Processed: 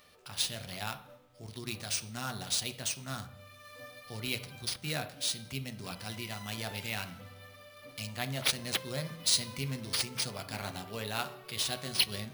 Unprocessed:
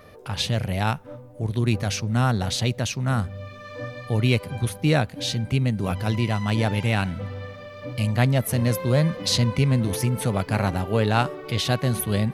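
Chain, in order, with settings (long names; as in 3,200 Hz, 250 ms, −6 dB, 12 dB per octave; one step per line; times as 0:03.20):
first-order pre-emphasis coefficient 0.9
on a send at −5.5 dB: convolution reverb RT60 0.55 s, pre-delay 3 ms
on the sum: bad sample-rate conversion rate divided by 3×, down none, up hold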